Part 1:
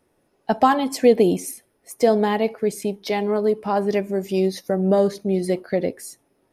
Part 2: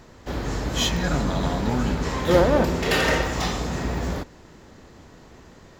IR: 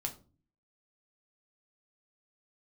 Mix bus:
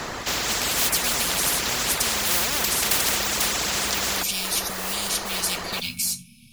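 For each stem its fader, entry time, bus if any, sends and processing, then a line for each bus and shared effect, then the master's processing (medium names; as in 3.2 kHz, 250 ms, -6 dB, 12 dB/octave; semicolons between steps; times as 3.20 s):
+0.5 dB, 0.00 s, send -8 dB, FFT band-reject 250–2200 Hz; treble shelf 9.1 kHz -7 dB
0.0 dB, 0.00 s, no send, small resonant body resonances 710/1200 Hz, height 8 dB; reverb removal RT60 0.65 s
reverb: on, RT60 0.35 s, pre-delay 6 ms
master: bass shelf 340 Hz -7.5 dB; modulation noise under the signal 30 dB; spectrum-flattening compressor 10:1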